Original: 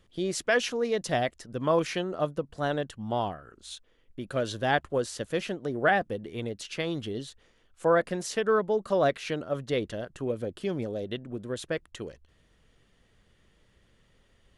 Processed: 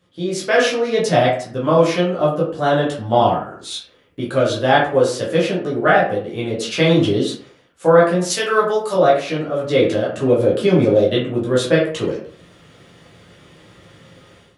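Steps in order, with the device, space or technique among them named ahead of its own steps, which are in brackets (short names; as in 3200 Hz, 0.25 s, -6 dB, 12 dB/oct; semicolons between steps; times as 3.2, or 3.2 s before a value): 8.3–8.94 RIAA curve recording; far laptop microphone (reverb RT60 0.50 s, pre-delay 9 ms, DRR -6 dB; HPF 120 Hz 12 dB/oct; AGC gain up to 15 dB); gain -1 dB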